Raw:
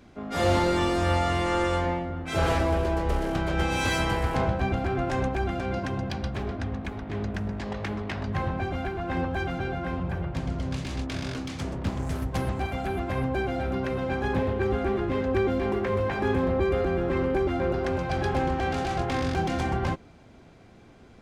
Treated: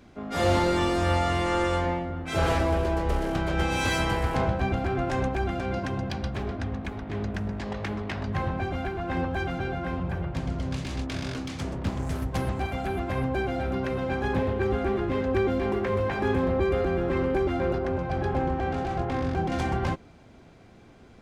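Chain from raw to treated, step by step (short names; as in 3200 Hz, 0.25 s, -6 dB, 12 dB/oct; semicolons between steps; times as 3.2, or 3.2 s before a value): 17.78–19.52 high shelf 2200 Hz -11.5 dB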